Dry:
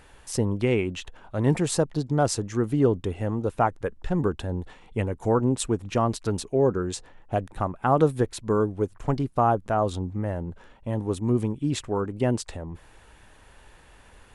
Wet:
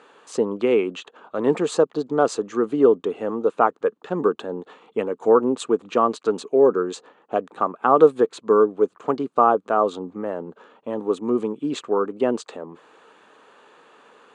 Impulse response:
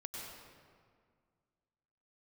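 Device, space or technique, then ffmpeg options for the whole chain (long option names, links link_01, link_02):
television speaker: -af "highpass=frequency=220:width=0.5412,highpass=frequency=220:width=1.3066,equalizer=frequency=450:width_type=q:width=4:gain=8,equalizer=frequency=1200:width_type=q:width=4:gain=9,equalizer=frequency=2000:width_type=q:width=4:gain=-5,equalizer=frequency=5400:width_type=q:width=4:gain=-10,lowpass=frequency=6900:width=0.5412,lowpass=frequency=6900:width=1.3066,volume=2dB"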